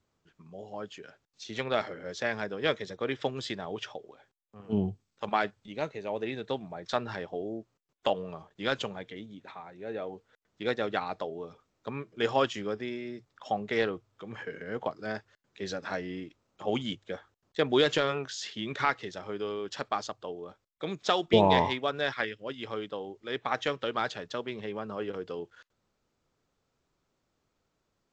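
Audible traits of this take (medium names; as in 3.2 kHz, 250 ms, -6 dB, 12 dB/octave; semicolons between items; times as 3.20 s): noise floor -79 dBFS; spectral tilt -3.0 dB/octave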